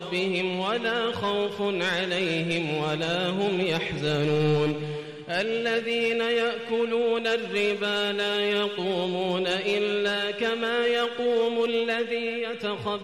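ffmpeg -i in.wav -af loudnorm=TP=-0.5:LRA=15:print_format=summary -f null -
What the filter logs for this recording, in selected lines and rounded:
Input Integrated:    -25.9 LUFS
Input True Peak:     -15.0 dBTP
Input LRA:             1.0 LU
Input Threshold:     -36.0 LUFS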